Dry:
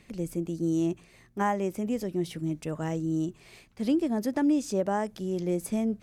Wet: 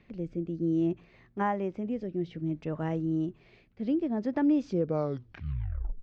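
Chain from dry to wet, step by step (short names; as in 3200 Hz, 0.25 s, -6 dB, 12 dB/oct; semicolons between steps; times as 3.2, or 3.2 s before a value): tape stop at the end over 1.39 s; rotary speaker horn 0.6 Hz, later 8 Hz, at 4.54; Gaussian blur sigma 2.3 samples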